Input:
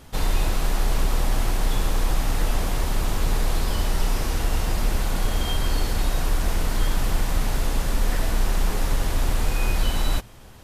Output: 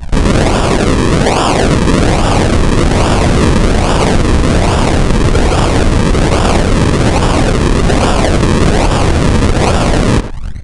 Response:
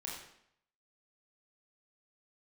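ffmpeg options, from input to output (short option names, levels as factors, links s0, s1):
-filter_complex "[0:a]asettb=1/sr,asplit=3[s0][s1][s2];[s0]atrim=end=0.774[s3];[s1]atrim=start=0.77:end=1.93,asetpts=PTS-STARTPTS,afade=t=in:d=0.004:c=qsin,afade=t=out:st=1.156:d=0.004:c=qsin,highpass=f=700:p=1[s4];[s2]atrim=start=1.926[s5];[s3][s4]acrossfade=d=0.004:c1=hsin:c2=qsin[s6];[s6][s5]acrossfade=d=0.004:c1=qsin:c2=hsin,anlmdn=0.631,afftfilt=real='re*lt(hypot(re,im),1)':imag='im*lt(hypot(re,im),1)':win_size=1024:overlap=0.75,acompressor=threshold=0.0316:ratio=8,acrusher=samples=42:mix=1:aa=0.000001:lfo=1:lforange=42:lforate=1.2,asplit=2[s7][s8];[s8]adelay=100,highpass=300,lowpass=3400,asoftclip=type=hard:threshold=0.0211,volume=0.224[s9];[s7][s9]amix=inputs=2:normalize=0,aresample=22050,aresample=44100,alimiter=level_in=33.5:limit=0.891:release=50:level=0:latency=1,volume=0.891"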